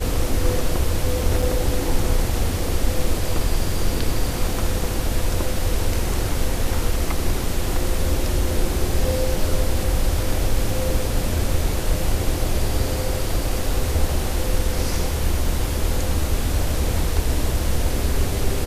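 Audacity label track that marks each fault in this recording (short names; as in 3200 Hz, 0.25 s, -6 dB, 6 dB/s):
1.420000	1.420000	gap 4.9 ms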